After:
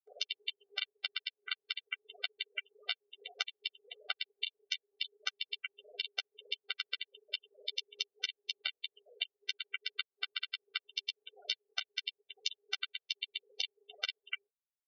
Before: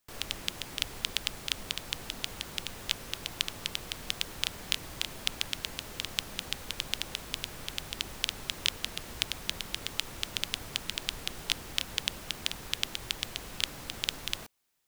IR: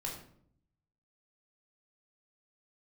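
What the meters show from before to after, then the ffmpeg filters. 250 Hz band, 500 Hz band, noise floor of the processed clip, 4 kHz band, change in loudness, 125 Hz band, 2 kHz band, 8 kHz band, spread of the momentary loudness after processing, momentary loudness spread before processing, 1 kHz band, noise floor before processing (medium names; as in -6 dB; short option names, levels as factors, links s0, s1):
under -30 dB, -12.0 dB, under -85 dBFS, -4.5 dB, -5.0 dB, under -40 dB, -3.0 dB, -15.5 dB, 5 LU, 5 LU, -9.5 dB, -46 dBFS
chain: -filter_complex "[0:a]afwtdn=0.0126,highpass=150,lowpass=3200,acompressor=threshold=0.00562:ratio=12,equalizer=f=280:w=3.6:g=11.5,asplit=2[s0][s1];[s1]aecho=0:1:10|35:0.631|0.133[s2];[s0][s2]amix=inputs=2:normalize=0,afftfilt=real='re*gte(hypot(re,im),0.00282)':imag='im*gte(hypot(re,im),0.00282)':win_size=1024:overlap=0.75,acompressor=mode=upward:threshold=0.00224:ratio=2.5,aecho=1:1:1.2:0.49,afftfilt=real='re*eq(mod(floor(b*sr/1024/390),2),1)':imag='im*eq(mod(floor(b*sr/1024/390),2),1)':win_size=1024:overlap=0.75,volume=6.68"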